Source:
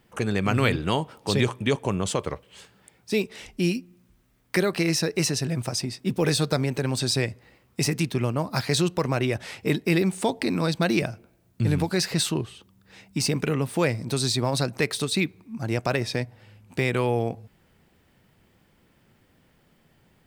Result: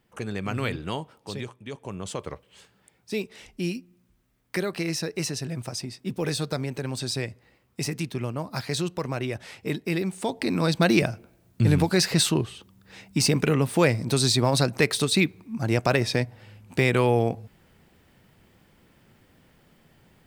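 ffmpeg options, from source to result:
-af "volume=13.5dB,afade=t=out:st=0.95:d=0.66:silence=0.298538,afade=t=in:st=1.61:d=0.72:silence=0.251189,afade=t=in:st=10.2:d=0.65:silence=0.398107"

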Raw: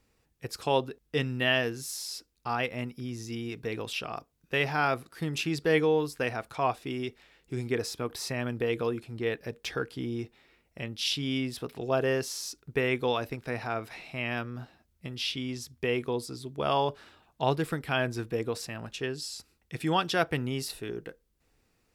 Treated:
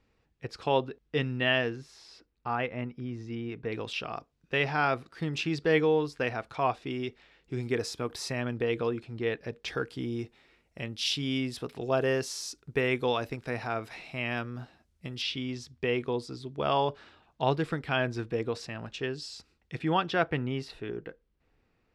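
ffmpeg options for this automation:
-af "asetnsamples=n=441:p=0,asendcmd='1.76 lowpass f 2300;3.72 lowpass f 5100;7.63 lowpass f 8800;8.4 lowpass f 5100;9.68 lowpass f 9400;15.22 lowpass f 5100;19.79 lowpass f 3000',lowpass=3.9k"

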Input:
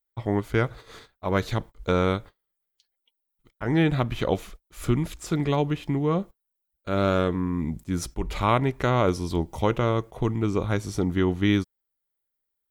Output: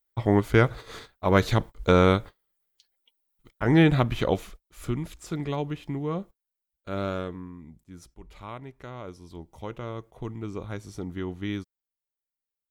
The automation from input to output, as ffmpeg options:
-af "volume=12dB,afade=t=out:st=3.64:d=1.21:silence=0.316228,afade=t=out:st=6.94:d=0.67:silence=0.251189,afade=t=in:st=9.19:d=1.09:silence=0.398107"

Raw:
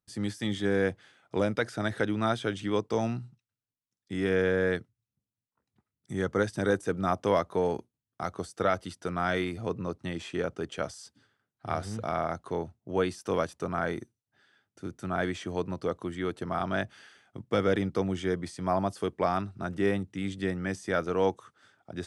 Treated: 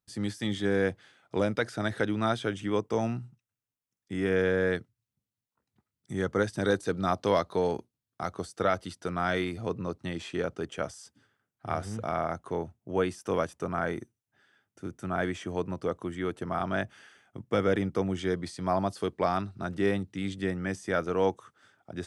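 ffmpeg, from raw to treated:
-af "asetnsamples=n=441:p=0,asendcmd='2.47 equalizer g -8.5;4.36 equalizer g 0.5;6.62 equalizer g 11;7.71 equalizer g 1.5;10.66 equalizer g -6.5;18.19 equalizer g 4.5;20.34 equalizer g -3',equalizer=f=4.2k:t=o:w=0.44:g=1"

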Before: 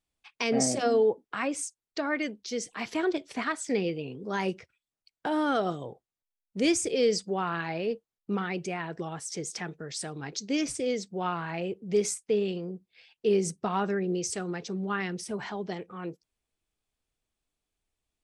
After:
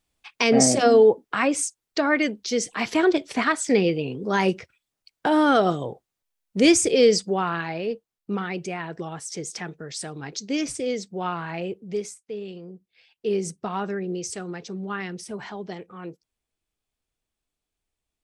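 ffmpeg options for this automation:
-af "volume=18.5dB,afade=t=out:st=6.95:d=0.79:silence=0.501187,afade=t=out:st=11.71:d=0.43:silence=0.237137,afade=t=in:st=12.14:d=1.22:silence=0.316228"

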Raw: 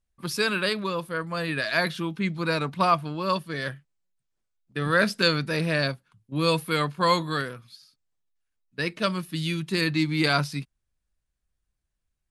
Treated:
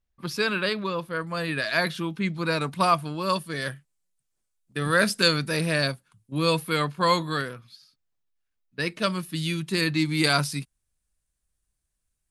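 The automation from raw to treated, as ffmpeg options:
-af "asetnsamples=n=441:p=0,asendcmd='1.13 equalizer g 2;2.61 equalizer g 10.5;6.39 equalizer g 1.5;7.55 equalizer g -4.5;8.8 equalizer g 4.5;10.05 equalizer g 11.5',equalizer=f=9.4k:t=o:w=1.1:g=-7"

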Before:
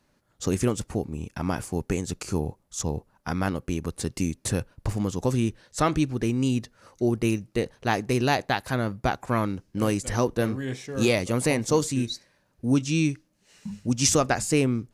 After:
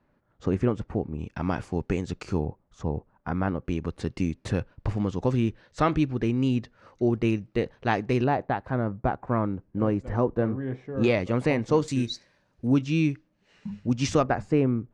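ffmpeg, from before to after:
-af "asetnsamples=n=441:p=0,asendcmd='1.19 lowpass f 3400;2.45 lowpass f 1600;3.65 lowpass f 3100;8.24 lowpass f 1200;11.04 lowpass f 2500;11.88 lowpass f 5600;12.67 lowpass f 2900;14.23 lowpass f 1400',lowpass=1.8k"

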